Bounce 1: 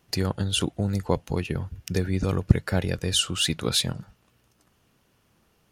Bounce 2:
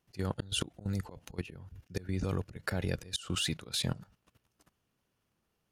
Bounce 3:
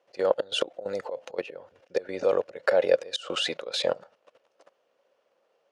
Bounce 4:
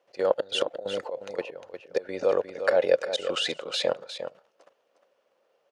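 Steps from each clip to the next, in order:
slow attack 159 ms; level held to a coarse grid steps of 16 dB
resonant high-pass 540 Hz, resonance Q 6.7; distance through air 110 m; trim +7.5 dB
delay 355 ms -9.5 dB

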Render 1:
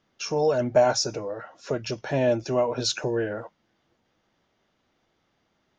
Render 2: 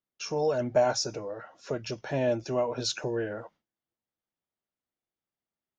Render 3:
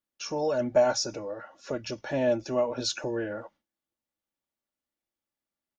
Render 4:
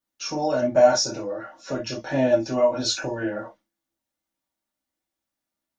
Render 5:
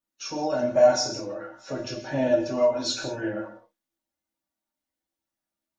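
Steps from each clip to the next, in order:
gate with hold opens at -48 dBFS; trim -4.5 dB
comb 3.5 ms, depth 40%
gated-style reverb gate 90 ms falling, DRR -3.5 dB
coarse spectral quantiser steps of 15 dB; gated-style reverb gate 190 ms flat, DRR 7.5 dB; trim -3.5 dB

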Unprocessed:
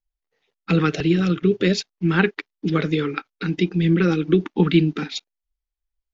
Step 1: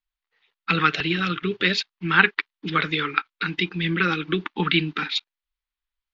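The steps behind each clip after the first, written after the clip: high-order bell 2 kHz +14.5 dB 2.6 oct; trim -8 dB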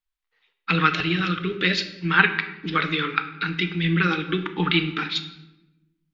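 simulated room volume 390 m³, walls mixed, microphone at 0.54 m; trim -1 dB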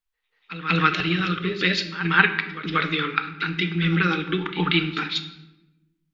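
reverse echo 186 ms -13.5 dB

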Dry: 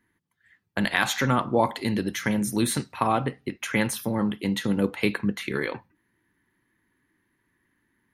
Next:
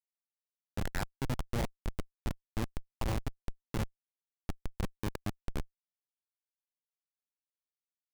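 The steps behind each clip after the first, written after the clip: low-pass 3.6 kHz 24 dB/octave; Schmitt trigger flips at -17.5 dBFS; trim -2.5 dB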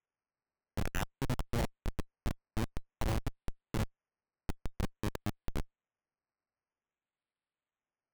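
decimation with a swept rate 10×, swing 60% 0.51 Hz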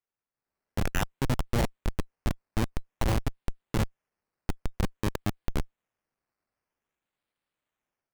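level rider gain up to 9 dB; trim -2 dB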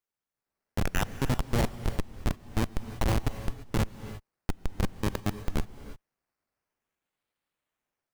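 gated-style reverb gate 370 ms rising, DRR 12 dB

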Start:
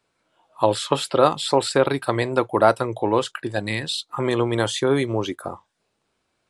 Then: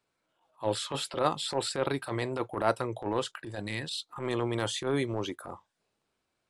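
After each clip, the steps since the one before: transient shaper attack -12 dB, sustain +1 dB; trim -7.5 dB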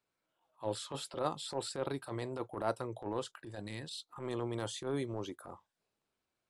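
dynamic bell 2.2 kHz, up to -6 dB, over -48 dBFS, Q 1; trim -6.5 dB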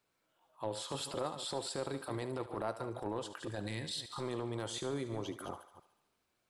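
chunks repeated in reverse 145 ms, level -13 dB; compression 4:1, threshold -41 dBFS, peak gain reduction 11.5 dB; thinning echo 73 ms, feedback 64%, high-pass 480 Hz, level -13 dB; trim +5.5 dB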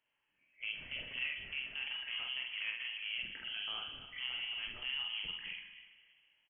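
doubling 47 ms -3 dB; plate-style reverb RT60 2.1 s, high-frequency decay 0.7×, DRR 8 dB; frequency inversion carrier 3.2 kHz; trim -4 dB

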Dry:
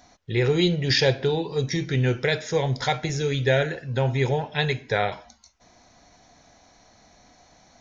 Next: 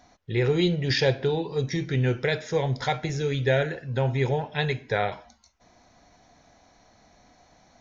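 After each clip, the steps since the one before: treble shelf 4 kHz -6.5 dB; trim -1.5 dB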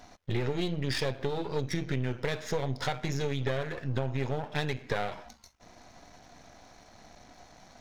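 partial rectifier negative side -12 dB; compression 6:1, threshold -34 dBFS, peak gain reduction 15 dB; trim +7 dB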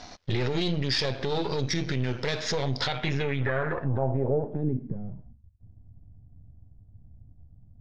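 peak limiter -25 dBFS, peak gain reduction 10.5 dB; low-pass sweep 5 kHz -> 100 Hz, 2.75–5.43 s; trim +7 dB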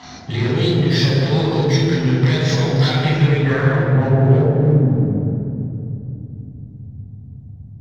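in parallel at -0.5 dB: overload inside the chain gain 32 dB; on the sum: reverberation RT60 2.8 s, pre-delay 3 ms, DRR -5 dB; trim -9 dB

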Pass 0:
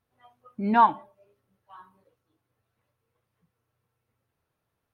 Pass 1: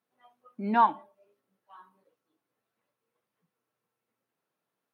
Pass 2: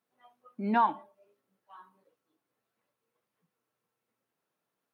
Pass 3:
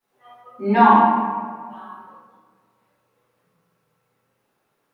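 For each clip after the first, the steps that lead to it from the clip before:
high-pass 180 Hz 24 dB/octave; trim -3.5 dB
peak limiter -15.5 dBFS, peak gain reduction 4.5 dB
reverberation RT60 1.7 s, pre-delay 3 ms, DRR -15 dB; trim -3.5 dB

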